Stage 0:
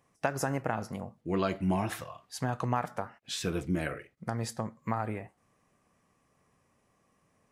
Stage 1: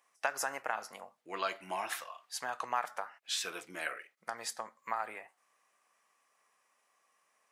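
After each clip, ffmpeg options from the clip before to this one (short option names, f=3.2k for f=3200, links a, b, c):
-af "highpass=920,volume=1.5dB"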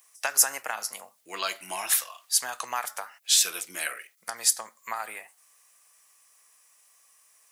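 -filter_complex "[0:a]highshelf=f=2.6k:g=9.5,acrossover=split=330[a][b];[b]crystalizer=i=2.5:c=0[c];[a][c]amix=inputs=2:normalize=0"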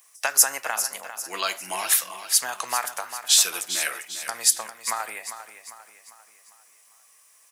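-af "aecho=1:1:399|798|1197|1596|1995:0.282|0.127|0.0571|0.0257|0.0116,volume=3.5dB"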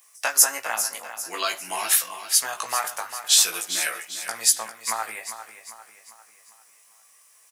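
-filter_complex "[0:a]asplit=2[a][b];[b]adelay=18,volume=-3.5dB[c];[a][c]amix=inputs=2:normalize=0,volume=-1dB"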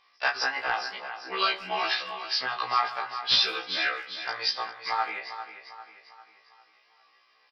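-filter_complex "[0:a]aresample=11025,volume=16dB,asoftclip=hard,volume=-16dB,aresample=44100,asplit=2[a][b];[b]adelay=160,highpass=300,lowpass=3.4k,asoftclip=type=hard:threshold=-21dB,volume=-19dB[c];[a][c]amix=inputs=2:normalize=0,afftfilt=real='re*1.73*eq(mod(b,3),0)':imag='im*1.73*eq(mod(b,3),0)':win_size=2048:overlap=0.75,volume=3.5dB"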